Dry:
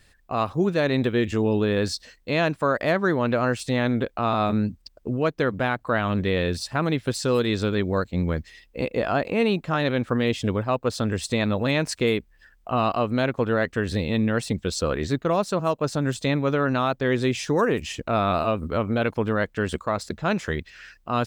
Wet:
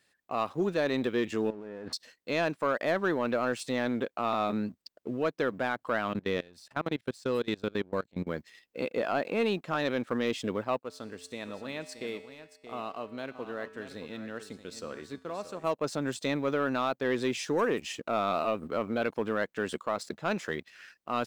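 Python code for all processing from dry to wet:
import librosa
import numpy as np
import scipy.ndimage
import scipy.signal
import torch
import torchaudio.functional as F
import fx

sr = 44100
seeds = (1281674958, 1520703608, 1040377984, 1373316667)

y = fx.chain(x, sr, fx.halfwave_gain(db=-7.0),
    fx.gaussian_blur(sigma=4.3),
    fx.over_compress(threshold_db=-34.0, ratio=-1.0), at=(1.5, 1.93))
y = fx.chain(y, sr, fx.level_steps(step_db=23),
    fx.low_shelf(hz=110.0, db=9.0), at=(6.13, 8.27))
y = fx.chain(y, sr, fx.comb_fb(f0_hz=88.0, decay_s=1.5, harmonics='odd', damping=0.0, mix_pct=70),
    fx.echo_single(ms=626, db=-11.0), at=(10.79, 15.64))
y = scipy.signal.sosfilt(scipy.signal.butter(2, 220.0, 'highpass', fs=sr, output='sos'), y)
y = fx.leveller(y, sr, passes=1)
y = y * librosa.db_to_amplitude(-8.5)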